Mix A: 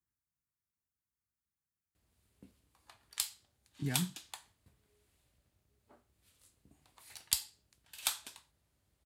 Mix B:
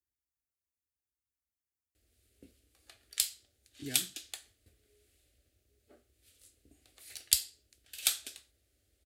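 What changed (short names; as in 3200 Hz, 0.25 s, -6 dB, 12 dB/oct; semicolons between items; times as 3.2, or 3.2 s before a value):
background +5.5 dB; master: add fixed phaser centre 400 Hz, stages 4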